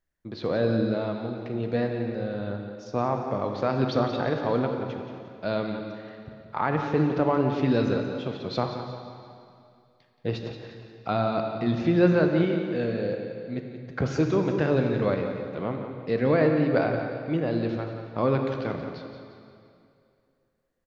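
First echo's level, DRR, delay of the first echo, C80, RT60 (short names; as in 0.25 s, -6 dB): -10.0 dB, 3.5 dB, 0.176 s, 4.5 dB, 2.5 s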